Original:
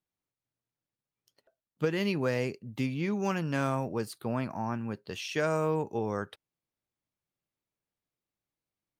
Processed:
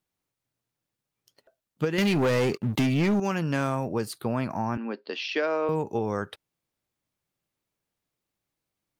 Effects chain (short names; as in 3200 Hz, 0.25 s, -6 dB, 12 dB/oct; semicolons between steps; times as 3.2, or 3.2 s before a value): 1.98–3.2 sample leveller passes 3; 4.77–5.69 Chebyshev band-pass 240–4900 Hz, order 4; compressor 3:1, threshold -30 dBFS, peak gain reduction 7 dB; gain +6.5 dB